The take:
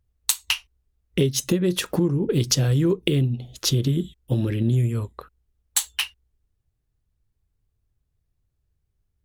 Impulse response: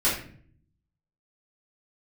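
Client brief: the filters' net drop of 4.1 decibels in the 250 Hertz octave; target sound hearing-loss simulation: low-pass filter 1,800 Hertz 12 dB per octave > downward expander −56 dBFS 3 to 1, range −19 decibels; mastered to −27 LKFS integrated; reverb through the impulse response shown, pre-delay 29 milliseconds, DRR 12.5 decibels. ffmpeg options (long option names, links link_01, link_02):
-filter_complex "[0:a]equalizer=frequency=250:width_type=o:gain=-7,asplit=2[link_01][link_02];[1:a]atrim=start_sample=2205,adelay=29[link_03];[link_02][link_03]afir=irnorm=-1:irlink=0,volume=-25dB[link_04];[link_01][link_04]amix=inputs=2:normalize=0,lowpass=1800,agate=range=-19dB:threshold=-56dB:ratio=3,volume=-0.5dB"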